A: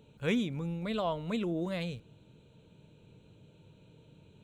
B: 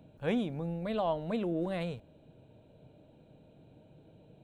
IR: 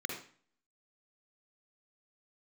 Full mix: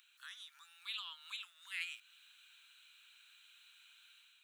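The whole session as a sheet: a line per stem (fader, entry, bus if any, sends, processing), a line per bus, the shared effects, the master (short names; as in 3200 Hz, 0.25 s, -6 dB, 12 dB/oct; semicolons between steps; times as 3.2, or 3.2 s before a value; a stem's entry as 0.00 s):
-1.0 dB, 0.00 s, no send, compressor, threshold -40 dBFS, peak gain reduction 13.5 dB
+0.5 dB, 0.00 s, no send, high shelf 2700 Hz +11.5 dB; compressor 2.5:1, threshold -46 dBFS, peak gain reduction 13.5 dB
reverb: off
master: steep high-pass 1300 Hz 48 dB/oct; AGC gain up to 6 dB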